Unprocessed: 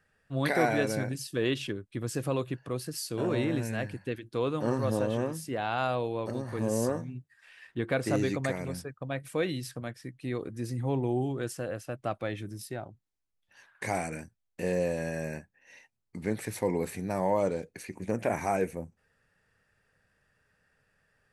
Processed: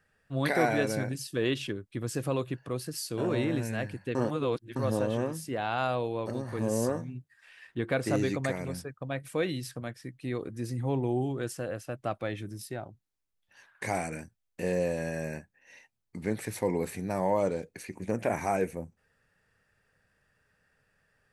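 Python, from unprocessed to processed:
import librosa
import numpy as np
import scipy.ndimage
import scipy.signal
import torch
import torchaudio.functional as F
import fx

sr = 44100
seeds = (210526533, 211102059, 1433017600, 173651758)

y = fx.edit(x, sr, fx.reverse_span(start_s=4.15, length_s=0.61), tone=tone)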